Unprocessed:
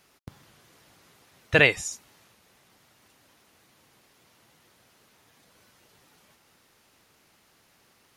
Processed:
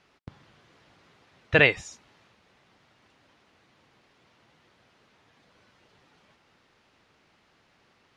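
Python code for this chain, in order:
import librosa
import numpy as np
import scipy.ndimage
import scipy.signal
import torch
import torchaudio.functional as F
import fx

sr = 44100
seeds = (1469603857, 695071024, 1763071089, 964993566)

y = scipy.signal.sosfilt(scipy.signal.butter(2, 3900.0, 'lowpass', fs=sr, output='sos'), x)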